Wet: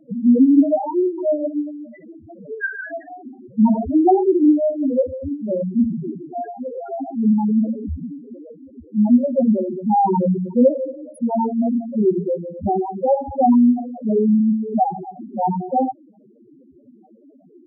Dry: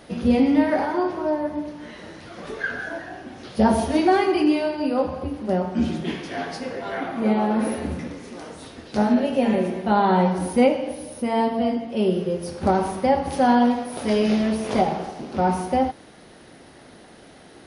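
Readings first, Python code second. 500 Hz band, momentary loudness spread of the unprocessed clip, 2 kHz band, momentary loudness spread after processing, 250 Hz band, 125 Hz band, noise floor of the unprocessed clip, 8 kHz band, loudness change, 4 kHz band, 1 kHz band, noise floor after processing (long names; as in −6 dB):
+2.0 dB, 14 LU, can't be measured, 15 LU, +4.5 dB, +1.5 dB, −47 dBFS, below −20 dB, +3.5 dB, below −40 dB, +0.5 dB, −51 dBFS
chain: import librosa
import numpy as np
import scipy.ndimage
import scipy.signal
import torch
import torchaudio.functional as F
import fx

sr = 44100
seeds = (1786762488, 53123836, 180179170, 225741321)

y = fx.hum_notches(x, sr, base_hz=60, count=3)
y = fx.spec_topn(y, sr, count=2)
y = y * 10.0 ** (7.0 / 20.0)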